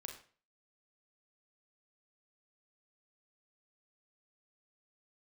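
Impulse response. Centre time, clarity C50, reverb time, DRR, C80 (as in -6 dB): 22 ms, 7.0 dB, 0.40 s, 2.5 dB, 11.5 dB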